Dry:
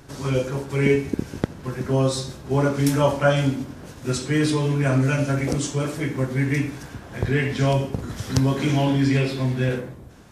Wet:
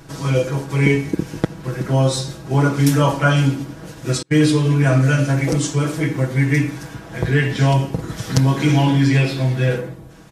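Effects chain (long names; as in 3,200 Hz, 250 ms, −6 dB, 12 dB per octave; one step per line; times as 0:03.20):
0:04.22–0:04.72: noise gate −22 dBFS, range −35 dB
comb filter 6.2 ms
level +3 dB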